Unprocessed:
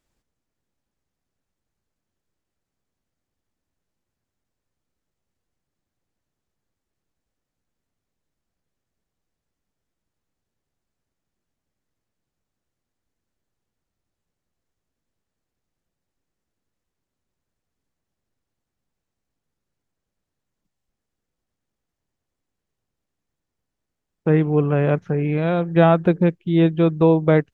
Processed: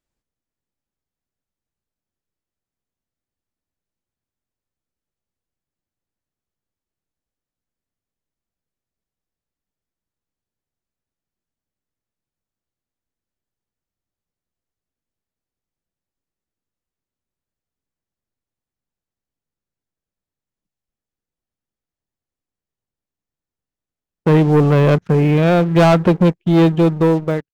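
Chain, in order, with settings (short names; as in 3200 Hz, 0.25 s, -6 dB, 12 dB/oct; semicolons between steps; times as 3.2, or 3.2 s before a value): ending faded out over 0.94 s; sample leveller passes 3; gain -2 dB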